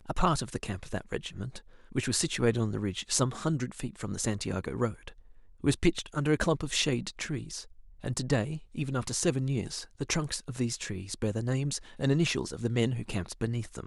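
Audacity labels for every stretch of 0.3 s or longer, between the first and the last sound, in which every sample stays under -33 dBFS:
1.570000	1.960000	silence
5.080000	5.640000	silence
7.610000	8.040000	silence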